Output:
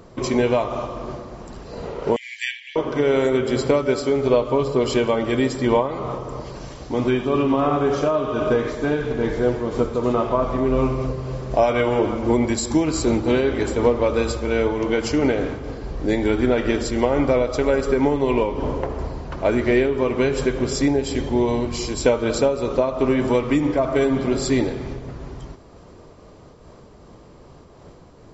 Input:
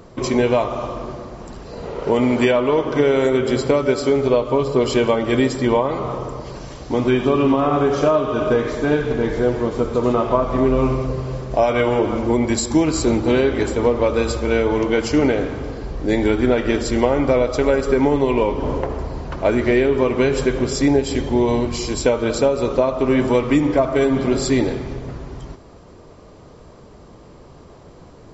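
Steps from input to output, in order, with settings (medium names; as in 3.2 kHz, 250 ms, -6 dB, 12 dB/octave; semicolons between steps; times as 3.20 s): 2.16–2.76 s: brick-wall FIR high-pass 1.6 kHz; random flutter of the level, depth 50%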